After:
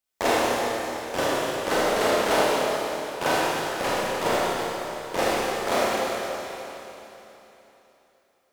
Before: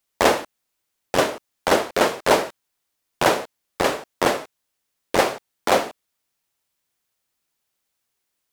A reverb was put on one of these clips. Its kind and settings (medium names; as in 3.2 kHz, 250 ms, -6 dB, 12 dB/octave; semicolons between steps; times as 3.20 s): Schroeder reverb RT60 3.4 s, combs from 25 ms, DRR -8 dB; trim -10 dB